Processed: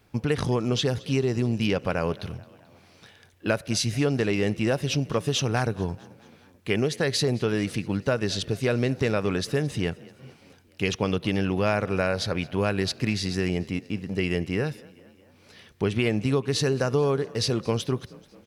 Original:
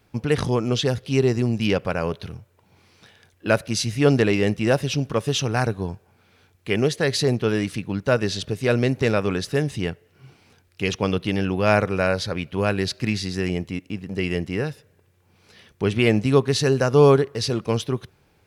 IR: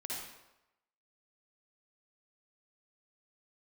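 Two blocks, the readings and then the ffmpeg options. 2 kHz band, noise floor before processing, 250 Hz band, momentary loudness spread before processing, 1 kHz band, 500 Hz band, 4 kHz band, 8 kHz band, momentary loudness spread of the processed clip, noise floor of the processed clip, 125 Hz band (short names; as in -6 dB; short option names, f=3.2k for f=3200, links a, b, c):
-4.0 dB, -61 dBFS, -3.0 dB, 10 LU, -5.0 dB, -5.0 dB, -2.0 dB, -1.5 dB, 7 LU, -57 dBFS, -3.5 dB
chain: -filter_complex "[0:a]acompressor=threshold=-20dB:ratio=6,asplit=2[a][b];[b]asplit=4[c][d][e][f];[c]adelay=218,afreqshift=32,volume=-22.5dB[g];[d]adelay=436,afreqshift=64,volume=-27.2dB[h];[e]adelay=654,afreqshift=96,volume=-32dB[i];[f]adelay=872,afreqshift=128,volume=-36.7dB[j];[g][h][i][j]amix=inputs=4:normalize=0[k];[a][k]amix=inputs=2:normalize=0"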